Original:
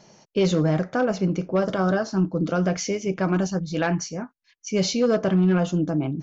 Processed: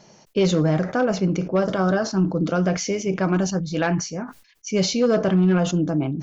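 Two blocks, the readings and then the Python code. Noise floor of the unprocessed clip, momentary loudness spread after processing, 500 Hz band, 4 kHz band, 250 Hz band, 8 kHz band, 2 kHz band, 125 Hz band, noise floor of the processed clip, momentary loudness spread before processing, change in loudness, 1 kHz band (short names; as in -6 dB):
-65 dBFS, 7 LU, +1.5 dB, +2.5 dB, +1.5 dB, n/a, +1.5 dB, +2.0 dB, -54 dBFS, 8 LU, +2.0 dB, +1.5 dB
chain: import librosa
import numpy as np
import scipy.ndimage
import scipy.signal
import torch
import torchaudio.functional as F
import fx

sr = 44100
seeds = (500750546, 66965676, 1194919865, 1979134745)

y = fx.sustainer(x, sr, db_per_s=130.0)
y = F.gain(torch.from_numpy(y), 1.5).numpy()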